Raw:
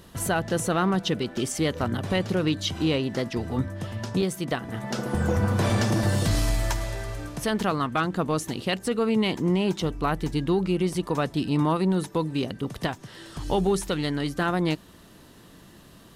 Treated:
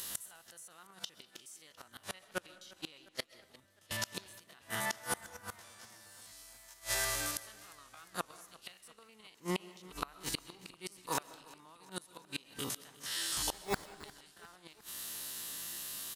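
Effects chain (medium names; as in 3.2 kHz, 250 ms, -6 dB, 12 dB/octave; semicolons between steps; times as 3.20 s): spectrogram pixelated in time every 50 ms; pre-emphasis filter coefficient 0.97; 2.24–3.91 s: gate -45 dBFS, range -31 dB; dynamic bell 1.1 kHz, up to +5 dB, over -59 dBFS, Q 0.77; in parallel at +1 dB: compression 6:1, threshold -51 dBFS, peak gain reduction 21 dB; 13.52–14.04 s: on the sum: sample-rate reducer 3 kHz, jitter 0%; inverted gate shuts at -31 dBFS, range -30 dB; speakerphone echo 200 ms, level -23 dB; on a send at -18 dB: reverberation RT60 0.95 s, pre-delay 90 ms; on the sum: modulated delay 354 ms, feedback 62%, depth 61 cents, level -21 dB; trim +11 dB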